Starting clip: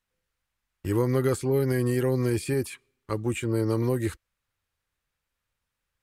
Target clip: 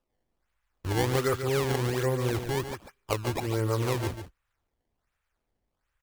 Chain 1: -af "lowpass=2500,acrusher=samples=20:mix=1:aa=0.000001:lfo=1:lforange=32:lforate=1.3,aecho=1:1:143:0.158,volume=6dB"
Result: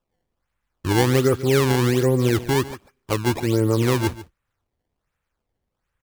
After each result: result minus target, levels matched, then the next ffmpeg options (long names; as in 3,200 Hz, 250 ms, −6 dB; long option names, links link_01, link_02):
echo-to-direct −7 dB; 250 Hz band +3.0 dB
-af "lowpass=2500,acrusher=samples=20:mix=1:aa=0.000001:lfo=1:lforange=32:lforate=1.3,aecho=1:1:143:0.355,volume=6dB"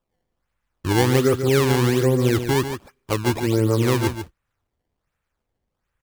250 Hz band +3.0 dB
-af "lowpass=2500,equalizer=frequency=230:width=0.6:gain=-14.5,acrusher=samples=20:mix=1:aa=0.000001:lfo=1:lforange=32:lforate=1.3,aecho=1:1:143:0.355,volume=6dB"